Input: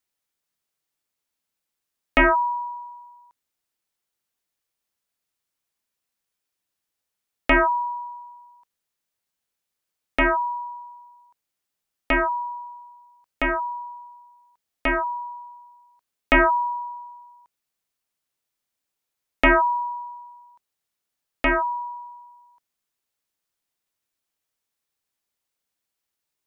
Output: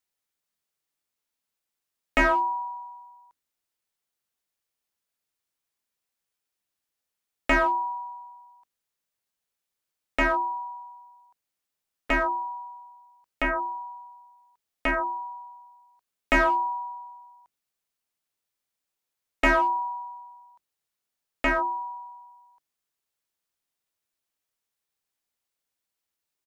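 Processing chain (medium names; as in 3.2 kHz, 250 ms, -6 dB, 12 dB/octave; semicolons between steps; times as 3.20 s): hum notches 50/100/150/200/250/300/350 Hz; harmony voices -4 st -16 dB; in parallel at -3.5 dB: hard clipper -17.5 dBFS, distortion -11 dB; on the sum: trim -7 dB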